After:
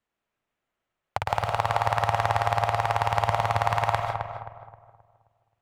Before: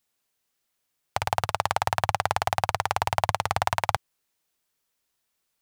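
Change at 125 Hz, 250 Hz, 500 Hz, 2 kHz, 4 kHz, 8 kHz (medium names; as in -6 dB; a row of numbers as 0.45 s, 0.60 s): +4.5 dB, +0.5 dB, +3.5 dB, +0.5 dB, -3.0 dB, -7.5 dB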